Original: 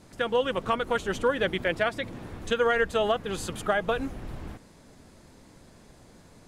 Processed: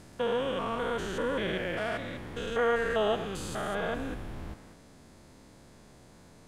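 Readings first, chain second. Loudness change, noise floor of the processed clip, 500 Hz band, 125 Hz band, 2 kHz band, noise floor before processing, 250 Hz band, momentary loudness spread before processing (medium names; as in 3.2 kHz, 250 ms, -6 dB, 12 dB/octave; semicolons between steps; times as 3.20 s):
-4.0 dB, -55 dBFS, -3.5 dB, -1.5 dB, -5.0 dB, -54 dBFS, -2.0 dB, 14 LU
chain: spectrogram pixelated in time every 200 ms; repeats whose band climbs or falls 102 ms, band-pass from 900 Hz, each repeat 0.7 oct, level -10 dB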